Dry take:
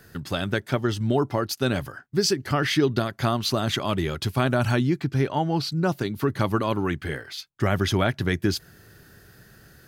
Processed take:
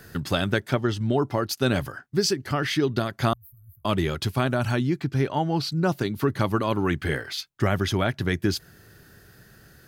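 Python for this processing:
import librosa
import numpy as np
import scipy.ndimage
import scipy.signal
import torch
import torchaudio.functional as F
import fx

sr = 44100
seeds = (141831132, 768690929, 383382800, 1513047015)

y = fx.high_shelf(x, sr, hz=9600.0, db=-9.5, at=(0.74, 1.23))
y = fx.cheby2_bandstop(y, sr, low_hz=210.0, high_hz=6400.0, order=4, stop_db=60, at=(3.33, 3.85))
y = fx.rider(y, sr, range_db=5, speed_s=0.5)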